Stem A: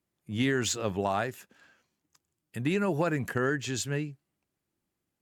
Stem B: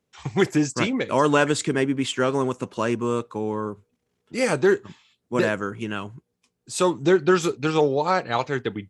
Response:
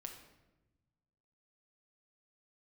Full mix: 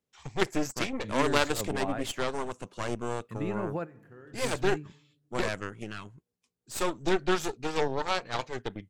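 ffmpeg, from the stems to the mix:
-filter_complex "[0:a]equalizer=f=8.2k:w=0.32:g=-13.5,adelay=750,volume=-6.5dB,asplit=2[a][b];[b]volume=-12.5dB[c];[1:a]highshelf=f=4.4k:g=3.5,aeval=exprs='0.596*(cos(1*acos(clip(val(0)/0.596,-1,1)))-cos(1*PI/2))+0.211*(cos(3*acos(clip(val(0)/0.596,-1,1)))-cos(3*PI/2))+0.0473*(cos(5*acos(clip(val(0)/0.596,-1,1)))-cos(5*PI/2))+0.0376*(cos(8*acos(clip(val(0)/0.596,-1,1)))-cos(8*PI/2))':c=same,volume=-1dB,asplit=2[d][e];[e]apad=whole_len=262954[f];[a][f]sidechaingate=range=-33dB:threshold=-52dB:ratio=16:detection=peak[g];[2:a]atrim=start_sample=2205[h];[c][h]afir=irnorm=-1:irlink=0[i];[g][d][i]amix=inputs=3:normalize=0"

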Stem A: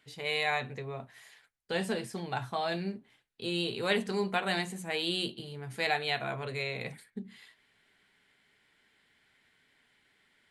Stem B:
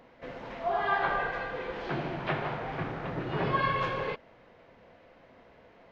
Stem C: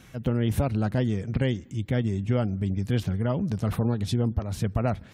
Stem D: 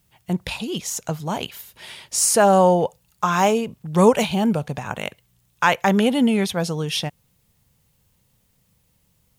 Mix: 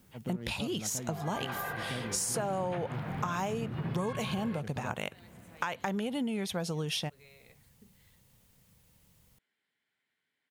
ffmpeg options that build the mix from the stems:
-filter_complex "[0:a]acompressor=threshold=-39dB:ratio=6,adelay=650,volume=-15.5dB[a];[1:a]asubboost=boost=10:cutoff=160,dynaudnorm=f=420:g=5:m=16dB,adelay=450,volume=-12.5dB[b];[2:a]adynamicsmooth=sensitivity=6:basefreq=1.2k,volume=-10dB[c];[3:a]acompressor=threshold=-20dB:ratio=6,volume=-0.5dB[d];[a][b][c]amix=inputs=3:normalize=0,highpass=120,alimiter=limit=-21dB:level=0:latency=1:release=253,volume=0dB[e];[d][e]amix=inputs=2:normalize=0,acompressor=threshold=-33dB:ratio=3"

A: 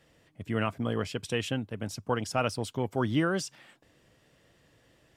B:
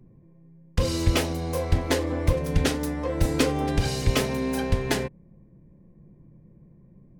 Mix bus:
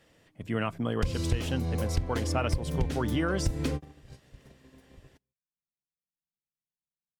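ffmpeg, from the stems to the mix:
-filter_complex "[0:a]bandreject=f=50:t=h:w=6,bandreject=f=100:t=h:w=6,bandreject=f=150:t=h:w=6,volume=1dB,asplit=2[a][b];[1:a]acrossover=split=200[c][d];[d]acompressor=threshold=-44dB:ratio=2[e];[c][e]amix=inputs=2:normalize=0,adelay=250,volume=2dB[f];[b]apad=whole_len=328358[g];[f][g]sidechaingate=range=-59dB:threshold=-58dB:ratio=16:detection=peak[h];[a][h]amix=inputs=2:normalize=0,acompressor=threshold=-23dB:ratio=10"

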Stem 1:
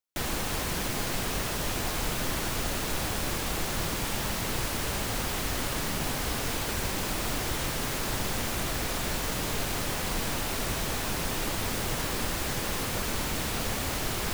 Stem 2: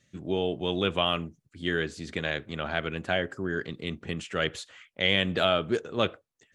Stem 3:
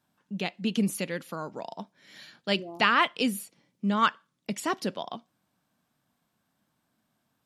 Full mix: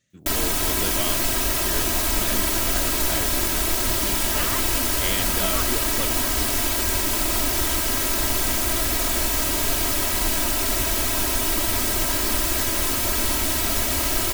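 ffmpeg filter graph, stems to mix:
-filter_complex "[0:a]aecho=1:1:3.1:0.93,adelay=100,volume=2.5dB[a];[1:a]volume=-6.5dB[b];[2:a]adelay=1550,volume=-11dB[c];[a][b][c]amix=inputs=3:normalize=0,crystalizer=i=1:c=0"

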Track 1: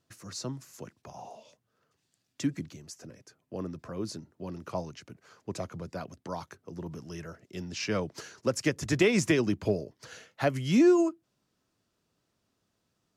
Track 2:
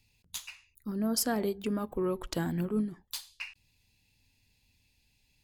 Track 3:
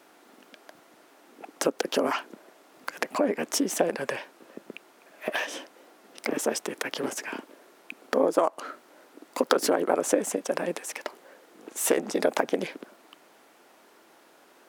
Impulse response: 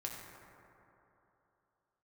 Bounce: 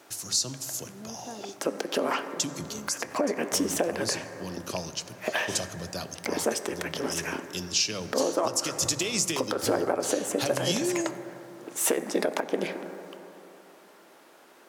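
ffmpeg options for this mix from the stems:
-filter_complex "[0:a]bandreject=f=50:t=h:w=6,bandreject=f=100:t=h:w=6,bandreject=f=150:t=h:w=6,bandreject=f=200:t=h:w=6,bandreject=f=250:t=h:w=6,acompressor=threshold=-29dB:ratio=6,aexciter=amount=5.5:drive=5.3:freq=2.8k,volume=-1dB,asplit=2[a][b];[b]volume=-7dB[c];[1:a]highpass=210,lowpass=1.4k,volume=-10.5dB[d];[2:a]volume=-1dB,asplit=2[e][f];[f]volume=-5dB[g];[3:a]atrim=start_sample=2205[h];[c][g]amix=inputs=2:normalize=0[i];[i][h]afir=irnorm=-1:irlink=0[j];[a][d][e][j]amix=inputs=4:normalize=0,alimiter=limit=-13.5dB:level=0:latency=1:release=284"

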